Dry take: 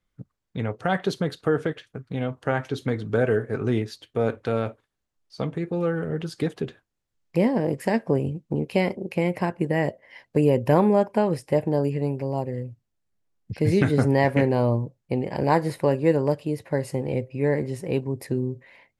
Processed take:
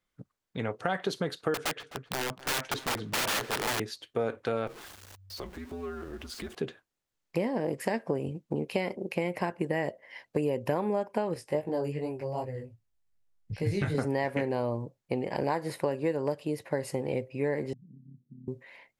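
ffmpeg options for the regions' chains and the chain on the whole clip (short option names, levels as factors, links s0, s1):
-filter_complex "[0:a]asettb=1/sr,asplit=3[s0][s1][s2];[s0]atrim=end=1.544[s3];[s1]atrim=start=1.54:end=3.8,asetpts=PTS-STARTPTS,afade=t=in:d=0.004:c=qsin,afade=t=out:st=2.256:d=0.004:c=qsin,lowpass=9100,aeval=exprs='(mod(13.3*val(0)+1,2)-1)/13.3':c=same,asplit=2[s4][s5];[s5]adelay=258,lowpass=f=4100:p=1,volume=0.141,asplit=2[s6][s7];[s7]adelay=258,lowpass=f=4100:p=1,volume=0.16[s8];[s4][s6][s8]amix=inputs=3:normalize=0,atrim=end_sample=99666[s9];[s2]atrim=start=3.796[s10];[s3][s9]acrossfade=d=0.004:c1=hsin:c2=qsin[s11];[s11][s10]acrossfade=d=0.004:c1=qsin:c2=hsin,asettb=1/sr,asplit=3[s12][s13][s14];[s12]atrim=end=4.674[s15];[s13]atrim=start=4.67:end=6.55,asetpts=PTS-STARTPTS,afade=t=in:d=0.004:c=qsin,afade=t=out:st=1.876:d=0.004:c=qsin,aeval=exprs='val(0)+0.5*0.0106*sgn(val(0))':c=same,afreqshift=-96,acompressor=threshold=0.0126:ratio=2:attack=3.2:release=140:knee=1:detection=peak[s16];[s14]atrim=start=6.546[s17];[s15][s16]acrossfade=d=0.004:c1=hsin:c2=qsin[s18];[s18][s17]acrossfade=d=0.004:c1=qsin:c2=hsin,asettb=1/sr,asplit=3[s19][s20][s21];[s19]atrim=end=11.344[s22];[s20]atrim=start=11.34:end=13.95,asetpts=PTS-STARTPTS,afade=t=in:d=0.004:c=qsin,afade=t=out:st=2.606:d=0.004:c=qsin,asubboost=boost=10:cutoff=100,flanger=delay=17:depth=3.6:speed=2.6[s23];[s21]atrim=start=13.946[s24];[s22][s23]acrossfade=d=0.004:c1=hsin:c2=qsin[s25];[s25][s24]acrossfade=d=0.004:c1=qsin:c2=hsin,asettb=1/sr,asplit=3[s26][s27][s28];[s26]atrim=end=17.734[s29];[s27]atrim=start=17.73:end=18.48,asetpts=PTS-STARTPTS,afade=t=in:d=0.004:c=qsin,afade=t=out:st=0.746:d=0.004:c=qsin,acompressor=threshold=0.0141:ratio=2.5:attack=3.2:release=140:knee=1:detection=peak,tremolo=f=34:d=0.75,asuperpass=centerf=170:order=8:qfactor=1.3[s30];[s28]atrim=start=18.476[s31];[s29][s30]acrossfade=d=0.004:c1=hsin:c2=qsin[s32];[s32][s31]acrossfade=d=0.004:c1=qsin:c2=hsin,lowshelf=f=200:g=-11,acompressor=threshold=0.0562:ratio=6"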